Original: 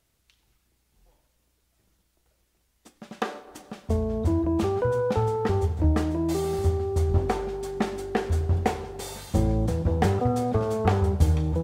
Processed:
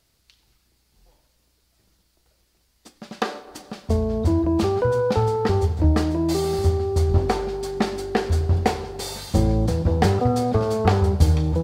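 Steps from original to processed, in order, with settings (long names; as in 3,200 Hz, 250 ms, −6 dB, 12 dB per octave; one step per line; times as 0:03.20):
parametric band 4,600 Hz +7.5 dB 0.49 octaves
level +4 dB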